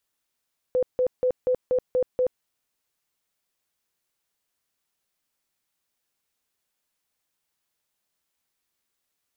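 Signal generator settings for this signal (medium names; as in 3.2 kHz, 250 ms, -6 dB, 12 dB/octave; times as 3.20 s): tone bursts 505 Hz, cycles 39, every 0.24 s, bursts 7, -18.5 dBFS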